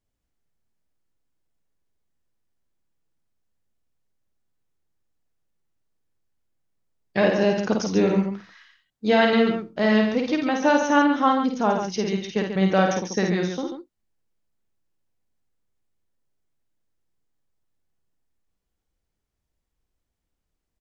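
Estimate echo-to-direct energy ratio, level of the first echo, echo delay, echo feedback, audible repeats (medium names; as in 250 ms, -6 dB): -2.0 dB, -4.0 dB, 52 ms, no regular repeats, 2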